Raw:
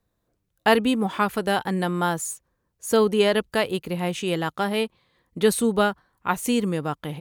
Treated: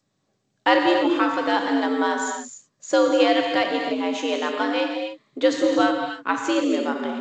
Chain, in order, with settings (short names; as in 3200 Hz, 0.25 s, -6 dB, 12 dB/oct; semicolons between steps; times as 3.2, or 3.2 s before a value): frequency shift +89 Hz; non-linear reverb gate 0.32 s flat, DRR 2 dB; G.722 64 kbps 16000 Hz